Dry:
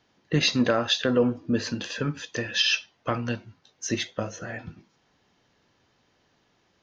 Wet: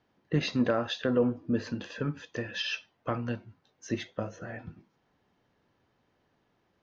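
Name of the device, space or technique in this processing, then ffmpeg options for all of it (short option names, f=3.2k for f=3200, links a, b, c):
through cloth: -af "highshelf=f=3.1k:g=-14,volume=-3.5dB"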